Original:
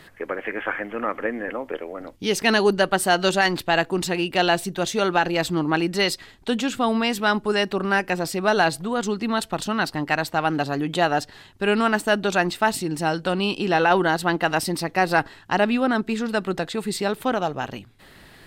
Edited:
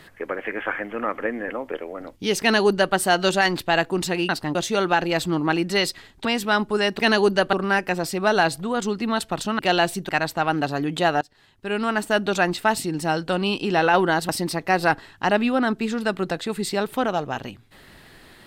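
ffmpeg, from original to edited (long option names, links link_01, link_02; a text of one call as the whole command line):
ffmpeg -i in.wav -filter_complex "[0:a]asplit=10[link_01][link_02][link_03][link_04][link_05][link_06][link_07][link_08][link_09][link_10];[link_01]atrim=end=4.292[link_11];[link_02]atrim=start=9.798:end=10.062[link_12];[link_03]atrim=start=4.788:end=6.492[link_13];[link_04]atrim=start=6.998:end=7.742[link_14];[link_05]atrim=start=2.408:end=2.952[link_15];[link_06]atrim=start=7.738:end=9.802[link_16];[link_07]atrim=start=4.288:end=4.792[link_17];[link_08]atrim=start=10.058:end=11.18,asetpts=PTS-STARTPTS,afade=type=out:start_time=1.118:duration=0.004:curve=hsin:silence=0.0794328[link_18];[link_09]atrim=start=11.18:end=14.262,asetpts=PTS-STARTPTS,afade=type=in:duration=1.02:silence=0.0794328[link_19];[link_10]atrim=start=14.568[link_20];[link_11][link_12]acrossfade=duration=0.004:curve1=hsin:curve2=hsin[link_21];[link_21][link_13]acrossfade=duration=0.004:curve1=hsin:curve2=hsin[link_22];[link_22][link_14]acrossfade=duration=0.004:curve1=hsin:curve2=hsin[link_23];[link_23][link_15]acrossfade=duration=0.004:curve1=hsin:curve2=hsin[link_24];[link_24][link_16]acrossfade=duration=0.004:curve1=hsin:curve2=hsin[link_25];[link_25][link_17]acrossfade=duration=0.004:curve1=hsin:curve2=hsin[link_26];[link_18][link_19]concat=n=2:v=0:a=1[link_27];[link_26][link_27]acrossfade=duration=0.004:curve1=hsin:curve2=hsin[link_28];[link_28][link_20]acrossfade=duration=0.004:curve1=hsin:curve2=hsin" out.wav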